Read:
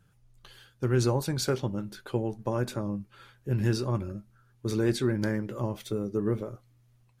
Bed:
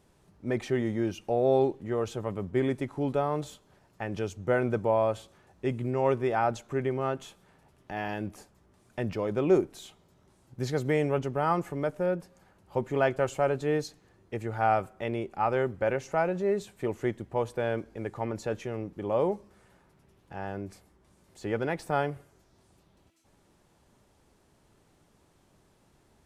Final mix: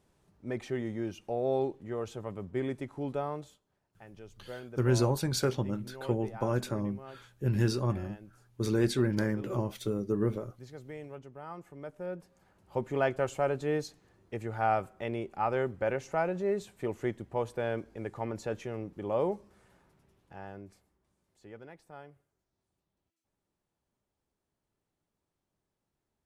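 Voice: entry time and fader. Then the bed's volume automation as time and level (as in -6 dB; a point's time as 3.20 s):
3.95 s, -1.0 dB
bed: 3.29 s -6 dB
3.66 s -17.5 dB
11.50 s -17.5 dB
12.64 s -3 dB
19.87 s -3 dB
21.85 s -21 dB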